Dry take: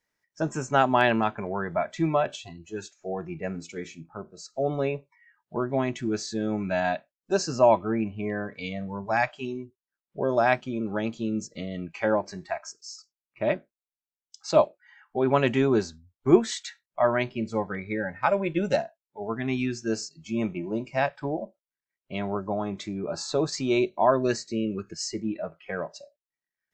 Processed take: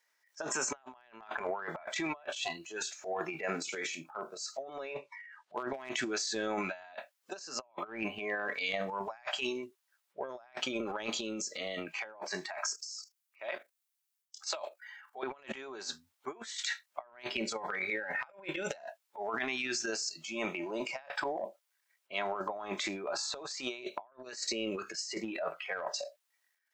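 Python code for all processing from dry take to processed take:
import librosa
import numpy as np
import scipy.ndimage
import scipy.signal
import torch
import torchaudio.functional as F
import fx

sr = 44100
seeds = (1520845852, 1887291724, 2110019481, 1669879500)

y = fx.chain(x, sr, fx.lowpass(hz=6300.0, slope=12),
    fx.clip_hard(threshold_db=-16.5), at=(4.93, 5.91))
y = fx.chain(y, sr, fx.highpass(hz=780.0, slope=6),
    fx.level_steps(step_db=13),
    fx.high_shelf(hz=6600.0, db=6.5), at=(12.74, 15.23))
y = scipy.signal.sosfilt(scipy.signal.butter(2, 740.0, 'highpass', fs=sr, output='sos'), y)
y = fx.transient(y, sr, attack_db=-5, sustain_db=10)
y = fx.over_compress(y, sr, threshold_db=-38.0, ratio=-0.5)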